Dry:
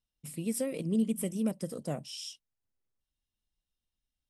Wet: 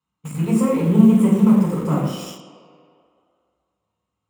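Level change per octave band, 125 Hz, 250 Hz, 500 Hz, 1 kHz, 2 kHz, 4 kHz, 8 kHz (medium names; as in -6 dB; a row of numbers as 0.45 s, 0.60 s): +19.5 dB, +17.5 dB, +12.5 dB, +20.5 dB, +12.5 dB, +5.0 dB, +3.0 dB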